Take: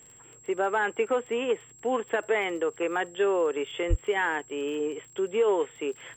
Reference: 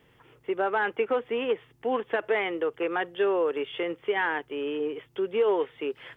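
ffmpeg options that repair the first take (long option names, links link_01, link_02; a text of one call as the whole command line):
ffmpeg -i in.wav -filter_complex "[0:a]adeclick=threshold=4,bandreject=frequency=7600:width=30,asplit=3[link_01][link_02][link_03];[link_01]afade=type=out:start_time=3.89:duration=0.02[link_04];[link_02]highpass=frequency=140:width=0.5412,highpass=frequency=140:width=1.3066,afade=type=in:start_time=3.89:duration=0.02,afade=type=out:start_time=4.01:duration=0.02[link_05];[link_03]afade=type=in:start_time=4.01:duration=0.02[link_06];[link_04][link_05][link_06]amix=inputs=3:normalize=0" out.wav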